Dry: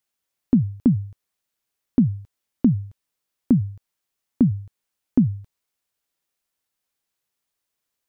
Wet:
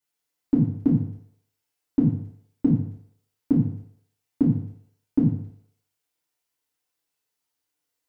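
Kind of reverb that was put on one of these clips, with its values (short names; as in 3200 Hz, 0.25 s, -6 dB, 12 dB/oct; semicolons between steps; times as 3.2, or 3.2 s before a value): FDN reverb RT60 0.69 s, low-frequency decay 0.7×, high-frequency decay 0.95×, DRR -8 dB; gain -9 dB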